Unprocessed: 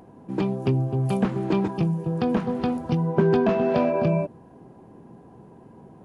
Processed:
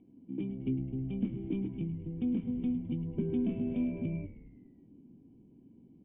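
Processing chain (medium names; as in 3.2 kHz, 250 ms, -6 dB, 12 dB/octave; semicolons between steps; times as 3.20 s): cascade formant filter i; frequency-shifting echo 105 ms, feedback 58%, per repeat -71 Hz, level -13 dB; trim -3.5 dB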